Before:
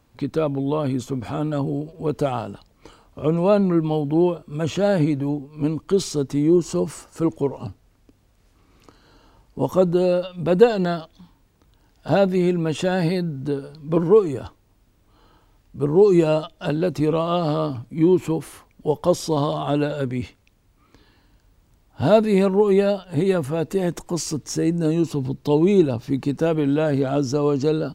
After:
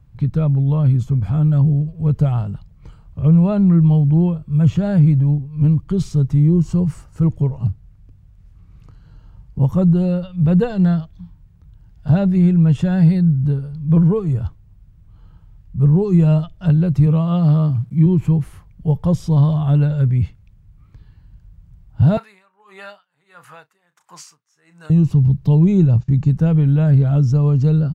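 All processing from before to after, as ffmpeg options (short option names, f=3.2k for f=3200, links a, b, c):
-filter_complex "[0:a]asettb=1/sr,asplit=3[a][b][c];[a]atrim=end=17.064[d];[b]atrim=start=17.06:end=18.06,asetpts=PTS-STARTPTS,afade=t=in:d=0.004:c=qsin,afade=t=out:st=0.996:d=0.004:c=qsin,highpass=94,acrusher=bits=8:mix=0:aa=0.5[e];[c]atrim=start=18.056[f];[d][e]acrossfade=d=0.004:c1=hsin:c2=qsin[g];[g][f]acrossfade=d=0.004:c1=qsin:c2=hsin,asettb=1/sr,asplit=3[h][i][j];[h]atrim=end=22.174[k];[i]atrim=start=22.17:end=24.9,asetpts=PTS-STARTPTS,afade=t=in:d=0.004:c=qsin,afade=t=out:st=2.726:d=0.004:c=qsin,highpass=f=1.2k:t=q:w=1.7,asplit=2[l][m];[m]adelay=34,volume=-13.5dB[n];[l][n]amix=inputs=2:normalize=0,atrim=end_sample=120393,aeval=exprs='val(0)*pow(10,-25*(0.5-0.5*cos(2*PI*1.5*n/s))/20)':c=same[o];[j]atrim=start=24.896[p];[k][o]acrossfade=d=0.004:c1=hsin:c2=qsin[q];[q][p]acrossfade=d=0.004:c1=qsin:c2=hsin,asettb=1/sr,asplit=3[r][s][t];[r]atrim=end=25.634[u];[s]atrim=start=25.63:end=26.3,asetpts=PTS-STARTPTS,afade=t=in:d=0.004:c=qsin,afade=t=out:st=0.666:d=0.004:c=qsin,aemphasis=mode=reproduction:type=50fm,agate=range=-18dB:threshold=-39dB:ratio=16:release=100:detection=peak,lowpass=f=7k:t=q:w=5[v];[t]atrim=start=26.296[w];[u][v]acrossfade=d=0.004:c1=hsin:c2=qsin[x];[x][w]acrossfade=d=0.004:c1=qsin:c2=hsin,firequalizer=gain_entry='entry(160,0);entry(240,-19);entry(350,-22);entry(1500,-19);entry(4200,-24)':delay=0.05:min_phase=1,alimiter=level_in=19dB:limit=-1dB:release=50:level=0:latency=1,volume=-4.5dB"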